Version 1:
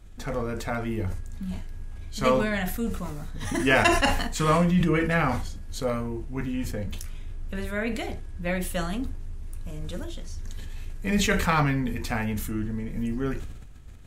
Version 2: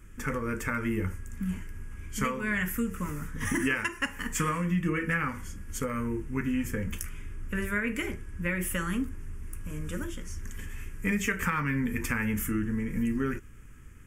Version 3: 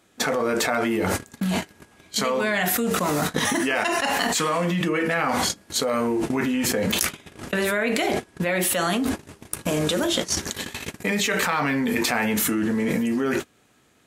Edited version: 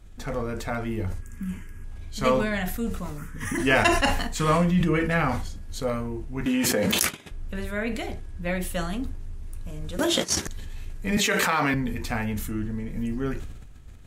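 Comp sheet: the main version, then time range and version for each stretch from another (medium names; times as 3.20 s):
1
1.22–1.84 s: from 2
3.18–3.58 s: from 2
6.46–7.31 s: from 3
9.99–10.47 s: from 3
11.17–11.74 s: from 3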